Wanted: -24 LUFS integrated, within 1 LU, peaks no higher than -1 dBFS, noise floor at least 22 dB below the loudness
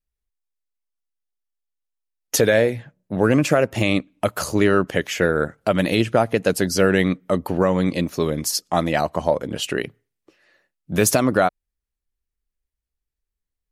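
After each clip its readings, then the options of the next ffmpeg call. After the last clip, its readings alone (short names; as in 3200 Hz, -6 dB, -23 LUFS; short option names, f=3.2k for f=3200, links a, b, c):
loudness -20.5 LUFS; peak -4.5 dBFS; loudness target -24.0 LUFS
-> -af "volume=-3.5dB"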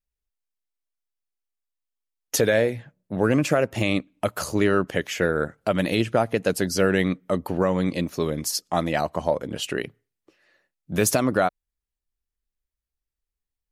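loudness -24.0 LUFS; peak -8.0 dBFS; noise floor -87 dBFS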